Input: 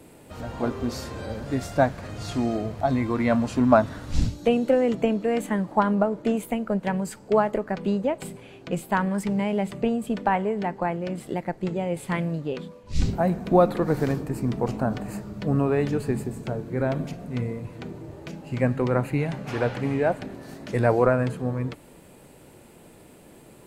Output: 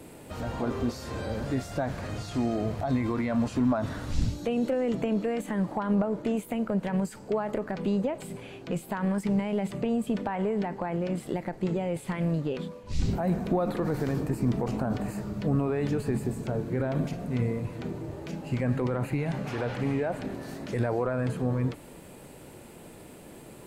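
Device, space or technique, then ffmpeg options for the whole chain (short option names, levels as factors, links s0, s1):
de-esser from a sidechain: -filter_complex "[0:a]asplit=2[s0][s1];[s1]highpass=f=6500:p=1,apad=whole_len=1043806[s2];[s0][s2]sidechaincompress=threshold=0.00282:ratio=3:attack=2.5:release=31,volume=1.33"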